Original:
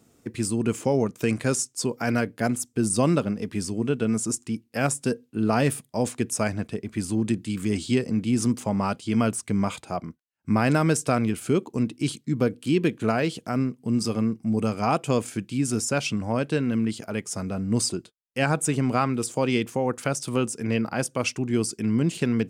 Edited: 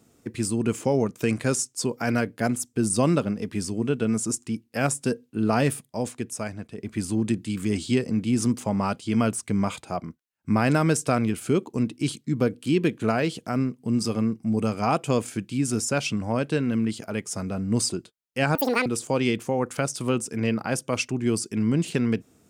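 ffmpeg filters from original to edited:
-filter_complex "[0:a]asplit=4[a][b][c][d];[a]atrim=end=6.78,asetpts=PTS-STARTPTS,afade=t=out:st=5.63:d=1.15:c=qua:silence=0.421697[e];[b]atrim=start=6.78:end=18.554,asetpts=PTS-STARTPTS,afade=t=in:d=0.004:c=hsin:silence=0.421697[f];[c]atrim=start=18.55:end=19.13,asetpts=PTS-STARTPTS,asetrate=82908,aresample=44100,atrim=end_sample=13605,asetpts=PTS-STARTPTS[g];[d]atrim=start=19.126[h];[e][f]concat=n=2:v=0:a=1[i];[i][g]acrossfade=d=0.004:c1=hsin:c2=hsin[j];[j][h]acrossfade=d=0.004:c1=hsin:c2=hsin"

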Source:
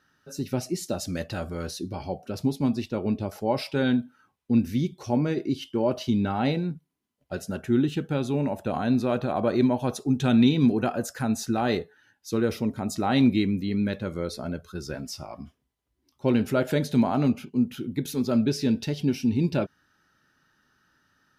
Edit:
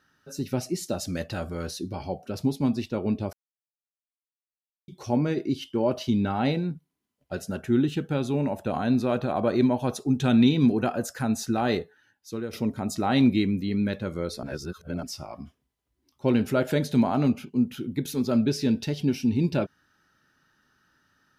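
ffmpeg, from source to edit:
-filter_complex "[0:a]asplit=6[a][b][c][d][e][f];[a]atrim=end=3.33,asetpts=PTS-STARTPTS,afade=t=out:st=3.326:d=0.004:c=hsin[g];[b]atrim=start=3.33:end=4.88,asetpts=PTS-STARTPTS,volume=0[h];[c]atrim=start=4.88:end=12.53,asetpts=PTS-STARTPTS,afade=t=in:d=0.004:c=hsin,afade=t=out:st=6.9:d=0.75:silence=0.281838[i];[d]atrim=start=12.53:end=14.432,asetpts=PTS-STARTPTS,afade=t=in:d=0.004:c=hsin:silence=0.281838[j];[e]atrim=start=14.428:end=15.032,asetpts=PTS-STARTPTS,areverse[k];[f]atrim=start=15.028[l];[g][h][i][j]concat=n=4:v=0:a=1[m];[m][k]acrossfade=d=0.004:c1=hsin:c2=hsin[n];[n][l]acrossfade=d=0.004:c1=hsin:c2=hsin"

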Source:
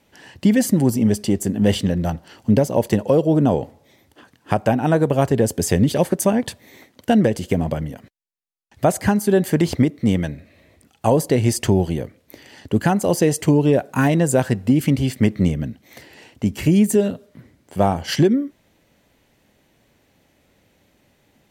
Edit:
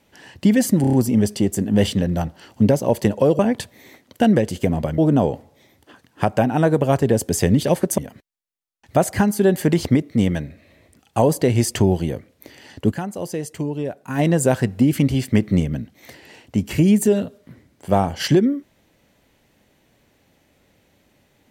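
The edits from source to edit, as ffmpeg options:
-filter_complex "[0:a]asplit=10[a][b][c][d][e][f][g][h][i][j];[a]atrim=end=0.842[k];[b]atrim=start=0.808:end=0.842[l];[c]atrim=start=0.808:end=0.842[m];[d]atrim=start=0.808:end=0.842[n];[e]atrim=start=0.808:end=3.272[o];[f]atrim=start=6.268:end=7.862[p];[g]atrim=start=3.268:end=6.272[q];[h]atrim=start=7.858:end=12.98,asetpts=PTS-STARTPTS,afade=t=out:st=4.932:d=0.19:c=exp:silence=0.316228[r];[i]atrim=start=12.98:end=13.89,asetpts=PTS-STARTPTS,volume=-10dB[s];[j]atrim=start=13.89,asetpts=PTS-STARTPTS,afade=t=in:d=0.19:c=exp:silence=0.316228[t];[k][l]acrossfade=d=0.004:c1=hsin:c2=hsin[u];[u][m]acrossfade=d=0.004:c1=hsin:c2=hsin[v];[v][n]acrossfade=d=0.004:c1=hsin:c2=hsin[w];[w][o]acrossfade=d=0.004:c1=hsin:c2=hsin[x];[x][p]acrossfade=d=0.004:c1=hsin:c2=hsin[y];[y][q]acrossfade=d=0.004:c1=hsin:c2=hsin[z];[r][s][t]concat=n=3:v=0:a=1[aa];[z][aa]acrossfade=d=0.004:c1=hsin:c2=hsin"

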